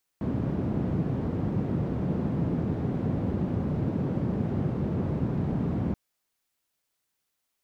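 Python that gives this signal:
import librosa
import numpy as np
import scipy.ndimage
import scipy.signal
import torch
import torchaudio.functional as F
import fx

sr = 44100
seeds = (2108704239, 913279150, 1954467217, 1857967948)

y = fx.band_noise(sr, seeds[0], length_s=5.73, low_hz=120.0, high_hz=170.0, level_db=-28.0)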